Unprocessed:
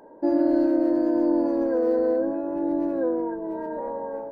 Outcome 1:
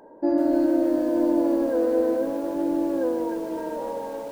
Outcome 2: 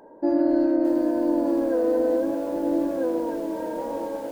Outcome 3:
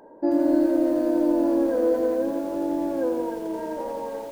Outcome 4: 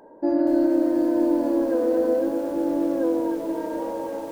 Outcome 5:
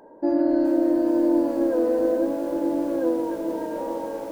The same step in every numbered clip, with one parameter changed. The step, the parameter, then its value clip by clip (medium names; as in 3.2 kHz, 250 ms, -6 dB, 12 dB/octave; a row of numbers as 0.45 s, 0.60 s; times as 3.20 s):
bit-crushed delay, time: 151 ms, 620 ms, 86 ms, 241 ms, 421 ms